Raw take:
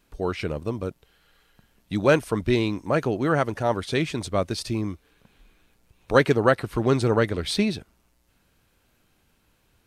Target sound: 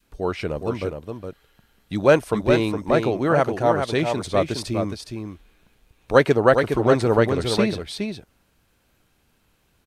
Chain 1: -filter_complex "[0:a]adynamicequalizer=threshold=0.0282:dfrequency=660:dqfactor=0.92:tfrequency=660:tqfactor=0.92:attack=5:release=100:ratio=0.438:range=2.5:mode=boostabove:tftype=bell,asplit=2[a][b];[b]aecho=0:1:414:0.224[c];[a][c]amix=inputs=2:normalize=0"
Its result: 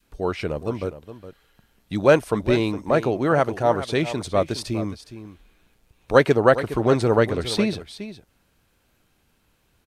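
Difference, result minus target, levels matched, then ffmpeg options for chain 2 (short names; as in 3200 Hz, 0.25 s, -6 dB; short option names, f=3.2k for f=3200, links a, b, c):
echo-to-direct -7 dB
-filter_complex "[0:a]adynamicequalizer=threshold=0.0282:dfrequency=660:dqfactor=0.92:tfrequency=660:tqfactor=0.92:attack=5:release=100:ratio=0.438:range=2.5:mode=boostabove:tftype=bell,asplit=2[a][b];[b]aecho=0:1:414:0.501[c];[a][c]amix=inputs=2:normalize=0"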